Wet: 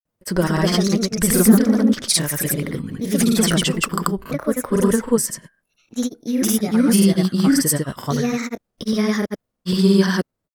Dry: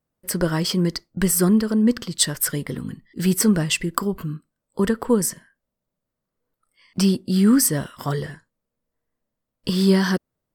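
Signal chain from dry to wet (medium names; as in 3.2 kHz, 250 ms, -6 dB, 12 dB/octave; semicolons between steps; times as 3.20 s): ever faster or slower copies 207 ms, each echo +2 st, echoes 2; granulator, grains 20 per s, pitch spread up and down by 0 st; trim +3 dB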